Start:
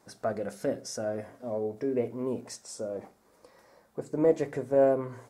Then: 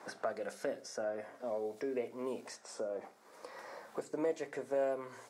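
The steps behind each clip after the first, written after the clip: frequency weighting A; three bands compressed up and down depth 70%; trim -3.5 dB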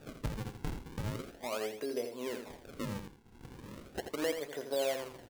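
decimation with a swept rate 41×, swing 160% 0.38 Hz; delay 83 ms -8 dB

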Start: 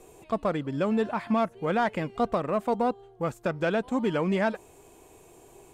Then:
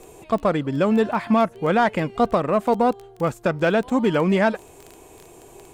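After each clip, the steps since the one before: crackle 11 per s -35 dBFS; trim +7 dB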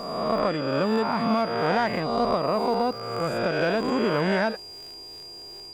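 reverse spectral sustain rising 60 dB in 1.44 s; whistle 4.8 kHz -32 dBFS; trim -7.5 dB

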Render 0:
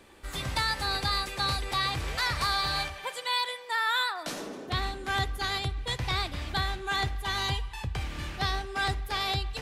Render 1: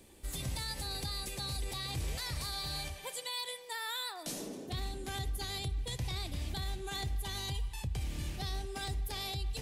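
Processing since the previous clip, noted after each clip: FFT filter 160 Hz 0 dB, 1.5 kHz -9 dB, 4.5 kHz -3 dB, 10 kHz +5 dB; peak limiter -28.5 dBFS, peak gain reduction 8 dB; peaking EQ 1.3 kHz -6 dB 0.87 oct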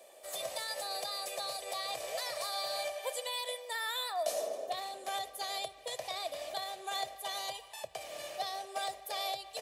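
resonant high-pass 630 Hz, resonance Q 6.4; comb 1.7 ms, depth 40%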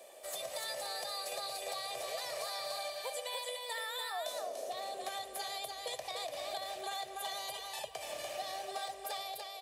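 fade out at the end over 0.60 s; compression, threshold -40 dBFS, peak gain reduction 11.5 dB; on a send: delay 292 ms -4 dB; on the sum: trim +2 dB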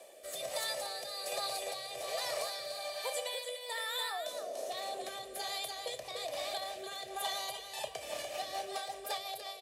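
rotary cabinet horn 1.2 Hz, later 5.5 Hz, at 7.51 s; doubling 31 ms -14 dB; trim +4 dB

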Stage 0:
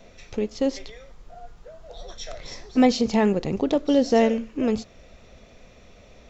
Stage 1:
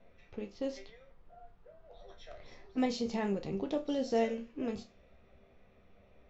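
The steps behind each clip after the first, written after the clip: level-controlled noise filter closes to 2.2 kHz, open at -15 dBFS; chord resonator C2 minor, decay 0.24 s; trim -3 dB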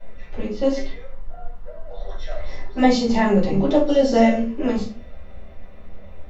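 simulated room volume 170 m³, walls furnished, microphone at 5 m; trim +5.5 dB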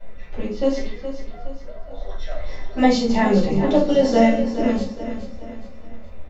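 feedback delay 418 ms, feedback 43%, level -11 dB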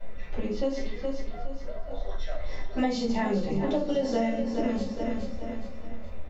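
compression 6:1, threshold -24 dBFS, peak gain reduction 13.5 dB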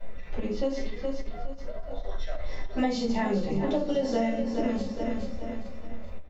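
endings held to a fixed fall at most 200 dB/s

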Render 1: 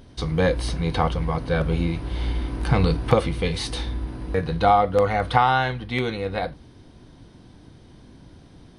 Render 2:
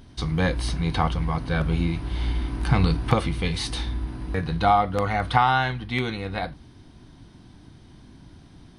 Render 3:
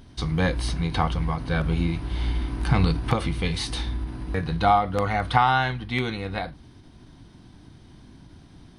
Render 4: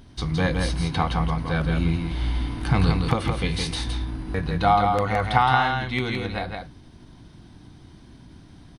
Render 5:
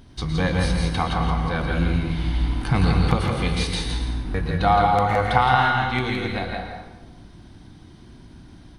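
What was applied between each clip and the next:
peaking EQ 500 Hz -8.5 dB 0.57 oct
endings held to a fixed fall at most 140 dB/s
delay 166 ms -4.5 dB
plate-style reverb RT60 1.1 s, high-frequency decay 0.7×, pre-delay 100 ms, DRR 3 dB

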